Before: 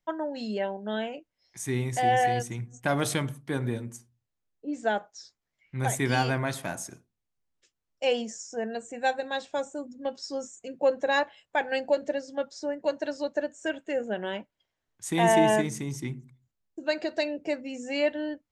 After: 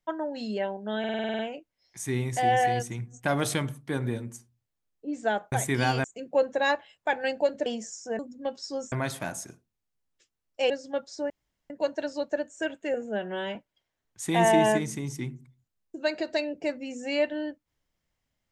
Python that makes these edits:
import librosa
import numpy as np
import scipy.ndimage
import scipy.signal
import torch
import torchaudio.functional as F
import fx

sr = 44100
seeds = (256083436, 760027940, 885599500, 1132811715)

y = fx.edit(x, sr, fx.stutter(start_s=0.99, slice_s=0.05, count=9),
    fx.cut(start_s=5.12, length_s=0.71),
    fx.swap(start_s=6.35, length_s=1.78, other_s=10.52, other_length_s=1.62),
    fx.cut(start_s=8.66, length_s=1.13),
    fx.insert_room_tone(at_s=12.74, length_s=0.4),
    fx.stretch_span(start_s=13.98, length_s=0.41, factor=1.5), tone=tone)